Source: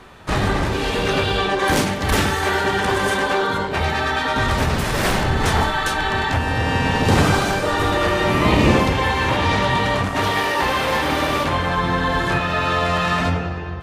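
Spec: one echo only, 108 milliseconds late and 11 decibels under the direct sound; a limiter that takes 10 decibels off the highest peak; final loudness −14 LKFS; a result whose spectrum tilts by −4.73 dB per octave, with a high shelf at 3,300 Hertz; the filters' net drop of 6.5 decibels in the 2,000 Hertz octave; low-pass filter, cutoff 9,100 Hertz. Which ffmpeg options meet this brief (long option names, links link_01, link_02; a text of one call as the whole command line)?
ffmpeg -i in.wav -af "lowpass=9100,equalizer=frequency=2000:width_type=o:gain=-6.5,highshelf=frequency=3300:gain=-6.5,alimiter=limit=-14dB:level=0:latency=1,aecho=1:1:108:0.282,volume=9dB" out.wav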